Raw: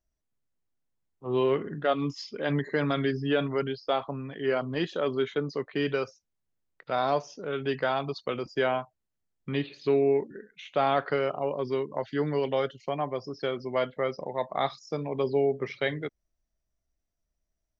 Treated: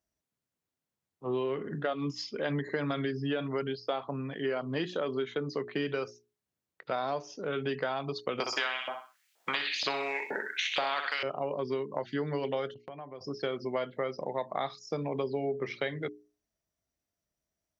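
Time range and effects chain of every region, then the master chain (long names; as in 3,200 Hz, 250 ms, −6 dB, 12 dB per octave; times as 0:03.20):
0:08.40–0:11.23: flutter between parallel walls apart 10.8 metres, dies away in 0.37 s + auto-filter high-pass saw up 2.1 Hz 580–2,900 Hz + every bin compressed towards the loudest bin 2 to 1
0:12.74–0:13.21: low-pass filter 3,600 Hz + noise gate −48 dBFS, range −16 dB + downward compressor 3 to 1, threshold −46 dBFS
whole clip: high-pass filter 99 Hz; mains-hum notches 60/120/180/240/300/360/420 Hz; downward compressor, threshold −30 dBFS; level +1.5 dB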